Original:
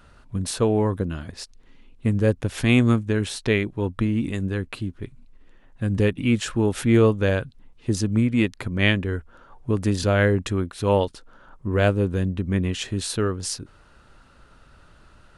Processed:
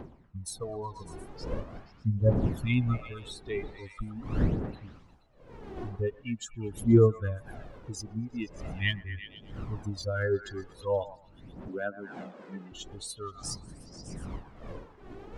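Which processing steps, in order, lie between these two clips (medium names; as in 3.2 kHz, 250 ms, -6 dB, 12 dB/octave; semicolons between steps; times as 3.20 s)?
expander on every frequency bin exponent 3; wind noise 300 Hz -38 dBFS; 11.68–12.72 s: elliptic band-pass 210–8600 Hz, stop band 40 dB; phaser 0.43 Hz, delay 2.8 ms, feedback 60%; repeats whose band climbs or falls 119 ms, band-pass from 970 Hz, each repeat 0.7 oct, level -9.5 dB; tape noise reduction on one side only encoder only; trim -6 dB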